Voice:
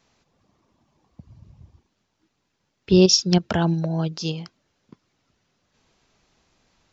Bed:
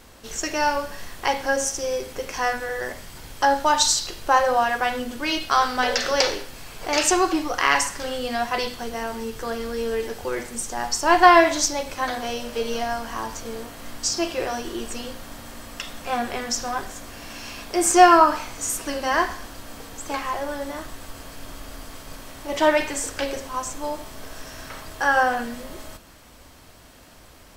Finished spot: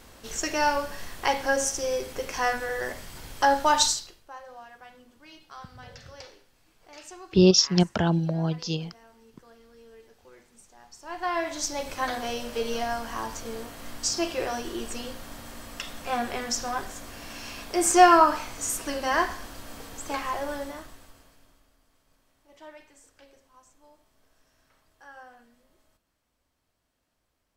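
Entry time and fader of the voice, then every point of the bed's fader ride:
4.45 s, −2.5 dB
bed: 0:03.84 −2 dB
0:04.27 −25.5 dB
0:10.91 −25.5 dB
0:11.86 −3 dB
0:20.57 −3 dB
0:21.76 −28.5 dB

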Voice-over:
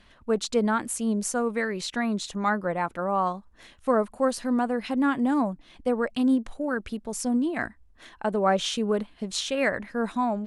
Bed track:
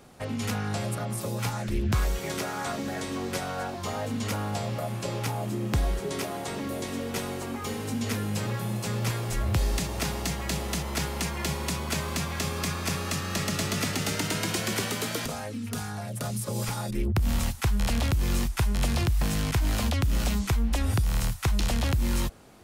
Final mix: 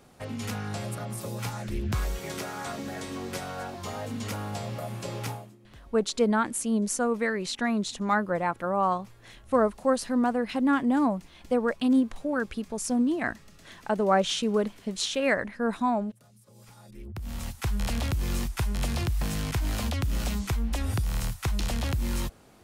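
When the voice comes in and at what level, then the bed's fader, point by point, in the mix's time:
5.65 s, 0.0 dB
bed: 0:05.32 −3.5 dB
0:05.58 −26.5 dB
0:16.40 −26.5 dB
0:17.71 −3 dB

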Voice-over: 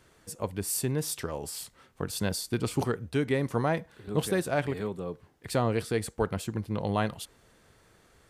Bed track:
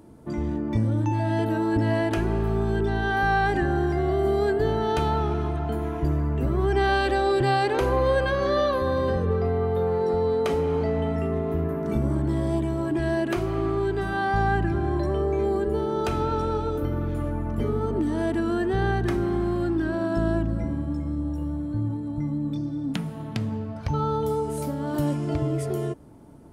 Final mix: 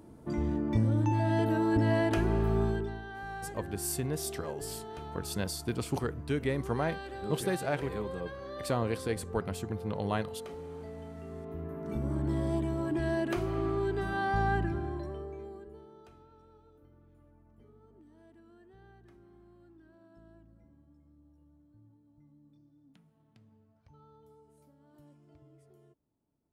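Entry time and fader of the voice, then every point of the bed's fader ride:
3.15 s, −4.0 dB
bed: 0:02.65 −3.5 dB
0:03.06 −19 dB
0:11.16 −19 dB
0:12.29 −6 dB
0:14.58 −6 dB
0:16.28 −33.5 dB

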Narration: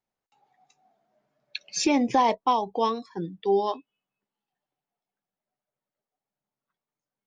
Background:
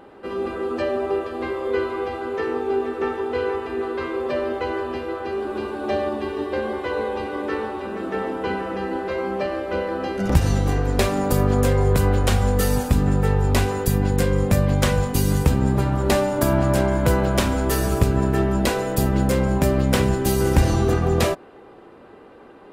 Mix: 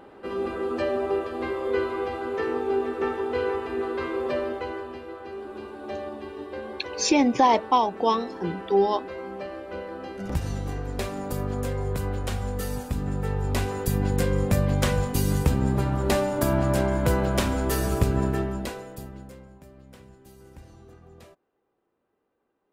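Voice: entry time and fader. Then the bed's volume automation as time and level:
5.25 s, +2.5 dB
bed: 0:04.31 −2.5 dB
0:04.98 −10.5 dB
0:12.93 −10.5 dB
0:14.07 −4 dB
0:18.26 −4 dB
0:19.60 −30.5 dB

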